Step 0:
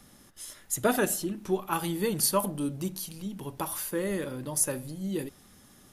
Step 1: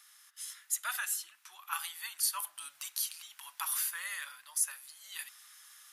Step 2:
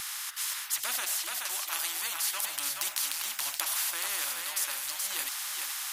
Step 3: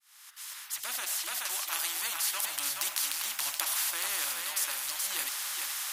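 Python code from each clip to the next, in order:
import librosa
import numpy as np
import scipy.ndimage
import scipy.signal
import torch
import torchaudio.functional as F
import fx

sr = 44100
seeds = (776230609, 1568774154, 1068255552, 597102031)

y1 = scipy.signal.sosfilt(scipy.signal.cheby2(4, 50, 470.0, 'highpass', fs=sr, output='sos'), x)
y1 = fx.rider(y1, sr, range_db=5, speed_s=0.5)
y1 = y1 * librosa.db_to_amplitude(-1.5)
y2 = y1 + 10.0 ** (-11.0 / 20.0) * np.pad(y1, (int(426 * sr / 1000.0), 0))[:len(y1)]
y2 = fx.spectral_comp(y2, sr, ratio=4.0)
y2 = y2 * librosa.db_to_amplitude(5.5)
y3 = fx.fade_in_head(y2, sr, length_s=1.36)
y3 = y3 + 10.0 ** (-14.5 / 20.0) * np.pad(y3, (int(1193 * sr / 1000.0), 0))[:len(y3)]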